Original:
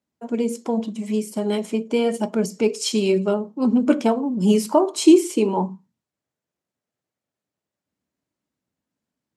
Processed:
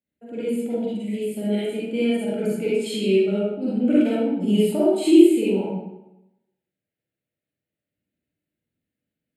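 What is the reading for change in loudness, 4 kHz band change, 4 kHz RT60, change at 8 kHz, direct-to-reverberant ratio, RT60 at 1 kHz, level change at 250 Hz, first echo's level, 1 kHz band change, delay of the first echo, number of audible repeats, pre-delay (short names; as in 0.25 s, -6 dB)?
-0.5 dB, -3.0 dB, 0.65 s, -8.5 dB, -8.5 dB, 0.90 s, 0.0 dB, none, -11.0 dB, none, none, 39 ms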